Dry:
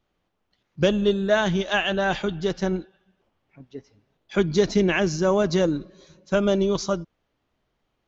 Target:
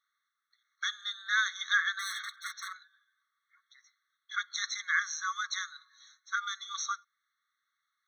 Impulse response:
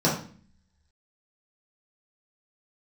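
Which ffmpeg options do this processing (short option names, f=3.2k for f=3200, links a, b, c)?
-filter_complex "[0:a]asettb=1/sr,asplit=3[a][b][c];[a]atrim=end=1.994[d];[b]atrim=start=1.99:end=2.73,asetpts=PTS-STARTPTS,afade=t=in:d=0.004:c=qsin,afade=t=out:st=0.736:d=0.004:c=qsin,aeval=exprs='0.0398*(abs(mod(val(0)/0.0398+3,4)-2)-1)':c=same[e];[c]atrim=start=2.726[f];[d][e]acrossfade=d=0.004:c1=hsin:c2=qsin[g];[g][f]acrossfade=d=0.004:c1=qsin:c2=hsin,afftfilt=real='re*eq(mod(floor(b*sr/1024/1100),2),1)':imag='im*eq(mod(floor(b*sr/1024/1100),2),1)':win_size=1024:overlap=0.75"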